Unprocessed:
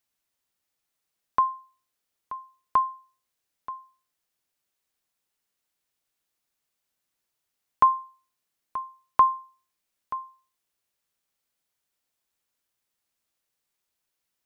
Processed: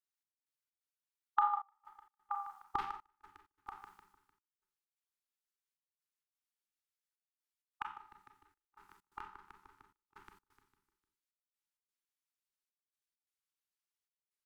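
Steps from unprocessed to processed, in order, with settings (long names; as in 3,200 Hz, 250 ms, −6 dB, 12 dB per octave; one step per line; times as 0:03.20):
pitch glide at a constant tempo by −5.5 semitones starting unshifted
noise gate with hold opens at −54 dBFS
dynamic equaliser 1,200 Hz, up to +5 dB, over −34 dBFS, Q 1.9
on a send: echo with shifted repeats 151 ms, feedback 48%, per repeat −33 Hz, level −5.5 dB
on the sum: downward compressor 6 to 1, threshold −33 dBFS, peak gain reduction 19 dB
linear-phase brick-wall band-stop 240–1,000 Hz
low-shelf EQ 67 Hz −10 dB
four-comb reverb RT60 0.44 s, combs from 29 ms, DRR 3 dB
gate pattern "xx..xx.xxxxx" 130 BPM −24 dB
ring modulation 190 Hz
level +7.5 dB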